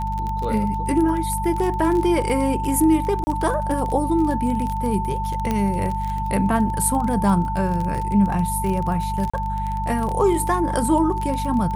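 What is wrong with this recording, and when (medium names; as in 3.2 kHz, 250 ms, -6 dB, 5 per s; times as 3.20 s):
crackle 24 per s -24 dBFS
hum 50 Hz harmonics 4 -27 dBFS
whine 890 Hz -25 dBFS
3.24–3.27 s: dropout 30 ms
5.51 s: pop -10 dBFS
9.30–9.34 s: dropout 35 ms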